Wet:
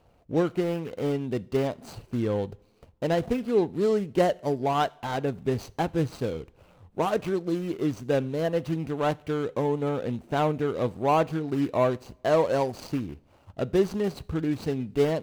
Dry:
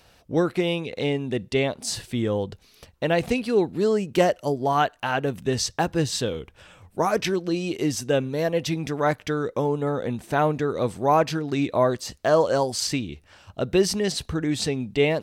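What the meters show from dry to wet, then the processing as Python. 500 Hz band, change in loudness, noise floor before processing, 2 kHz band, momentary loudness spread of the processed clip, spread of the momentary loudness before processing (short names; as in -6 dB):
-2.5 dB, -3.0 dB, -58 dBFS, -7.5 dB, 7 LU, 7 LU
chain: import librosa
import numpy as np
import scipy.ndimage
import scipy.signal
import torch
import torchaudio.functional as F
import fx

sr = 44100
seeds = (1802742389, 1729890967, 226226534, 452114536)

y = scipy.signal.medfilt(x, 25)
y = fx.rev_double_slope(y, sr, seeds[0], early_s=0.5, late_s=1.9, knee_db=-18, drr_db=20.0)
y = y * 10.0 ** (-2.0 / 20.0)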